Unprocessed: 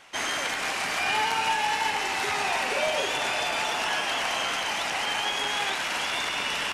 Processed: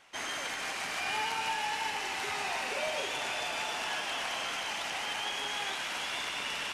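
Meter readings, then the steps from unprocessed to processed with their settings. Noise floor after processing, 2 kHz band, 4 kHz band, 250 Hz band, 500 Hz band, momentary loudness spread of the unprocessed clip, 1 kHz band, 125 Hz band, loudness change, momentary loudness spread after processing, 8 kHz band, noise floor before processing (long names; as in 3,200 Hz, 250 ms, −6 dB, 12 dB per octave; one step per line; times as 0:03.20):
−37 dBFS, −7.0 dB, −6.5 dB, −8.0 dB, −8.0 dB, 3 LU, −8.0 dB, −8.0 dB, −7.0 dB, 2 LU, −6.5 dB, −30 dBFS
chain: delay with a high-pass on its return 154 ms, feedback 75%, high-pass 2,100 Hz, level −7 dB
level −8 dB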